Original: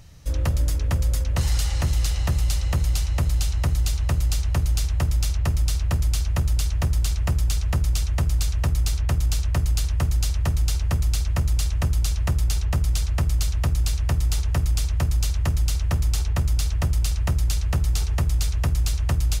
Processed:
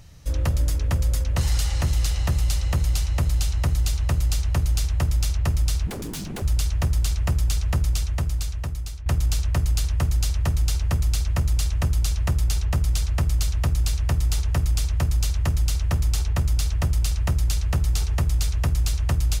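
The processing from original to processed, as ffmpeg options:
-filter_complex "[0:a]asettb=1/sr,asplit=3[a][b][c];[a]atrim=end=5.874[d];[b]atrim=start=5.87:end=6.42,asetpts=PTS-STARTPTS,afade=t=in:d=0.004:c=qsin,afade=t=out:st=0.546:d=0.004:c=qsin,aeval=exprs='0.0473*(abs(mod(val(0)/0.0473+3,4)-2)-1)':c=same[e];[c]atrim=start=6.416[f];[d][e]acrossfade=d=0.004:c1=hsin:c2=qsin[g];[g][f]acrossfade=d=0.004:c1=qsin:c2=hsin,asplit=2[h][i];[h]atrim=end=9.06,asetpts=PTS-STARTPTS,afade=t=out:st=7.83:d=1.23:silence=0.211349[j];[i]atrim=start=9.06,asetpts=PTS-STARTPTS,afade=t=in:d=0.004:c=hsin:silence=0.211349[k];[j][k]concat=n=2:v=0:a=1"

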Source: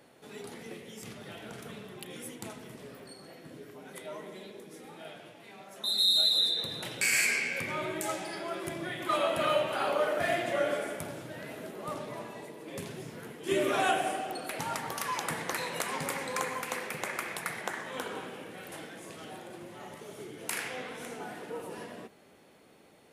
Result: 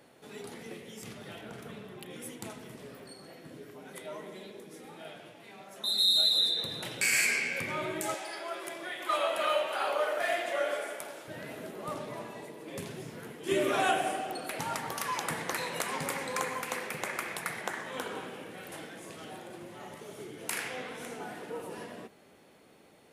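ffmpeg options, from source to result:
-filter_complex "[0:a]asettb=1/sr,asplit=3[a][b][c];[a]atrim=end=1.414[d];[b]atrim=start=1.41:end=2.22,asetpts=PTS-STARTPTS,afade=t=in:d=0.004:c=qsin,afade=t=out:st=0.806:d=0.004:c=qsin,equalizer=f=8.3k:t=o:w=2.6:g=-5[e];[c]atrim=start=2.216[f];[d][e]acrossfade=d=0.004:c1=hsin:c2=qsin[g];[g][f]acrossfade=d=0.004:c1=qsin:c2=hsin,asettb=1/sr,asplit=3[h][i][j];[h]atrim=end=8.144[k];[i]atrim=start=8.14:end=11.28,asetpts=PTS-STARTPTS,afade=t=in:d=0.004:c=qsin,afade=t=out:st=3.136:d=0.004:c=qsin,highpass=490[l];[j]atrim=start=11.276[m];[k][l]acrossfade=d=0.004:c1=hsin:c2=qsin[n];[n][m]acrossfade=d=0.004:c1=qsin:c2=hsin"

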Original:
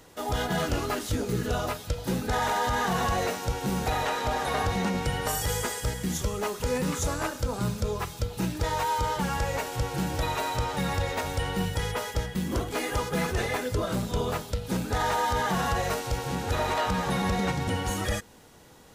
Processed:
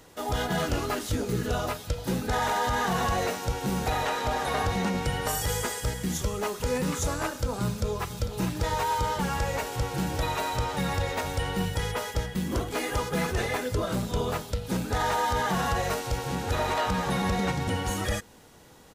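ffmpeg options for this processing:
-filter_complex "[0:a]asplit=2[a][b];[b]afade=t=in:st=7.65:d=0.01,afade=t=out:st=8.2:d=0.01,aecho=0:1:450|900|1350|1800|2250|2700|3150|3600|4050|4500|4950|5400:0.334965|0.251224|0.188418|0.141314|0.105985|0.0794889|0.0596167|0.0447125|0.0335344|0.0251508|0.0188631|0.0141473[c];[a][c]amix=inputs=2:normalize=0"

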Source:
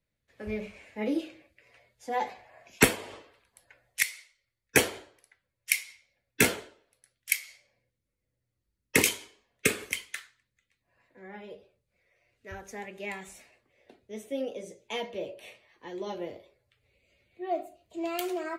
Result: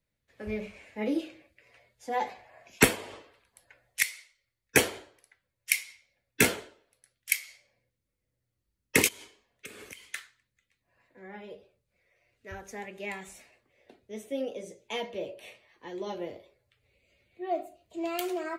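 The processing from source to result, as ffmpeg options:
-filter_complex "[0:a]asplit=3[a][b][c];[a]afade=t=out:st=9.07:d=0.02[d];[b]acompressor=threshold=-42dB:ratio=6:attack=3.2:release=140:knee=1:detection=peak,afade=t=in:st=9.07:d=0.02,afade=t=out:st=10.07:d=0.02[e];[c]afade=t=in:st=10.07:d=0.02[f];[d][e][f]amix=inputs=3:normalize=0"

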